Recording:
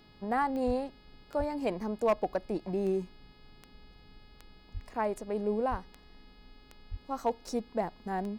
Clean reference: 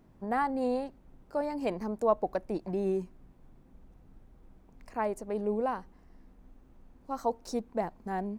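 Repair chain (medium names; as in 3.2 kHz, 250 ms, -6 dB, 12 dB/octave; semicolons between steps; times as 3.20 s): clip repair -20 dBFS; de-click; de-hum 420.8 Hz, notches 12; de-plosive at 0.66/1.38/4.73/5.70/6.90 s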